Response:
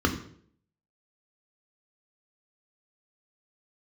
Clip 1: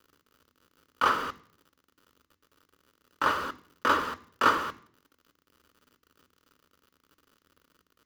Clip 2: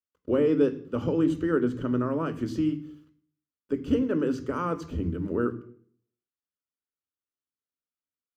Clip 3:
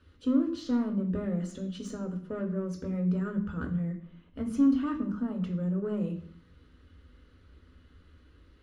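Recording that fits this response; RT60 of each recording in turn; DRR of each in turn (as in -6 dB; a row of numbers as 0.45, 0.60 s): 3; 0.60, 0.60, 0.60 s; 14.5, 10.0, 3.5 dB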